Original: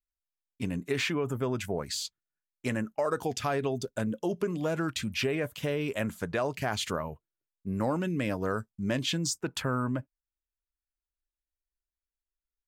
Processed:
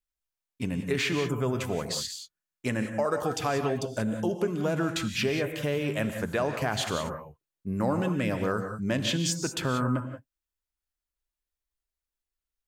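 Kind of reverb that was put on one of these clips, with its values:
reverb whose tail is shaped and stops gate 210 ms rising, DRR 6.5 dB
level +1.5 dB

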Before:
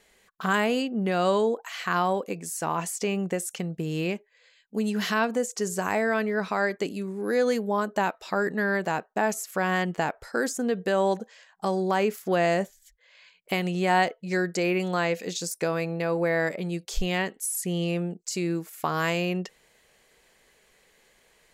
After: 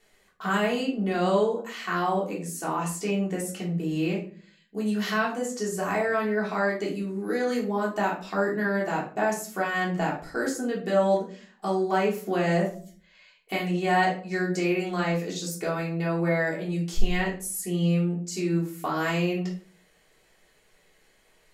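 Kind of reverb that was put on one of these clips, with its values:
rectangular room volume 350 cubic metres, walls furnished, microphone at 3.4 metres
level −7 dB

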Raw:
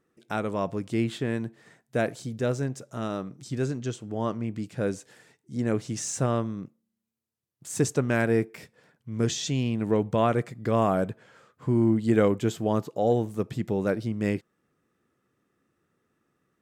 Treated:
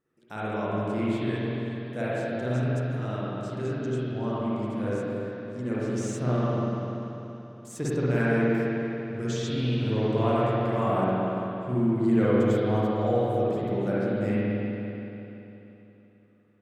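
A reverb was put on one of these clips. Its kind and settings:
spring reverb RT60 3.3 s, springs 48/56 ms, chirp 25 ms, DRR −9.5 dB
level −9.5 dB

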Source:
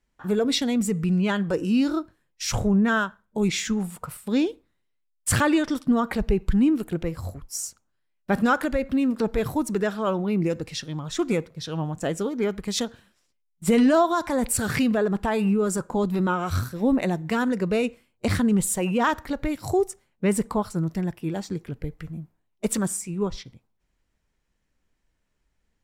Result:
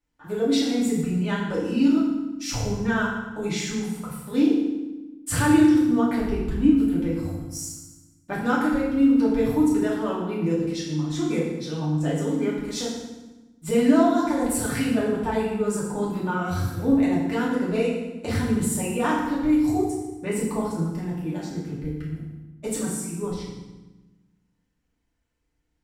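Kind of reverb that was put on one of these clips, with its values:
feedback delay network reverb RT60 1.1 s, low-frequency decay 1.55×, high-frequency decay 0.85×, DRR −7 dB
level −9.5 dB

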